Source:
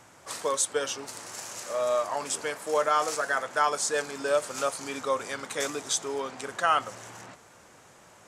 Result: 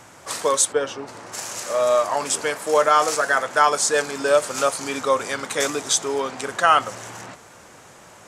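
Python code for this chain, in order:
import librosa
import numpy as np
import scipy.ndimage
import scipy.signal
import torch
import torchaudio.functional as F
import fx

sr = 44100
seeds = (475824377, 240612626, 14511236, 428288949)

y = fx.lowpass(x, sr, hz=1300.0, slope=6, at=(0.71, 1.32), fade=0.02)
y = F.gain(torch.from_numpy(y), 8.0).numpy()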